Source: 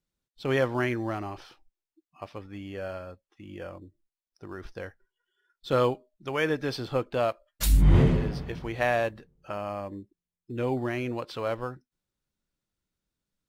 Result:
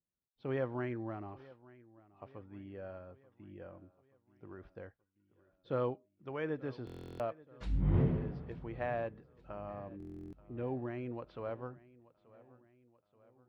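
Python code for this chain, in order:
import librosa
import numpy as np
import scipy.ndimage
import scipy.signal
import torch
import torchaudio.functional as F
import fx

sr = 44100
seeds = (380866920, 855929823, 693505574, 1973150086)

p1 = scipy.signal.sosfilt(scipy.signal.butter(2, 63.0, 'highpass', fs=sr, output='sos'), x)
p2 = fx.spacing_loss(p1, sr, db_at_10k=40)
p3 = p2 + fx.echo_feedback(p2, sr, ms=881, feedback_pct=54, wet_db=-21, dry=0)
p4 = fx.buffer_glitch(p3, sr, at_s=(6.85, 9.98), block=1024, repeats=14)
y = p4 * 10.0 ** (-8.0 / 20.0)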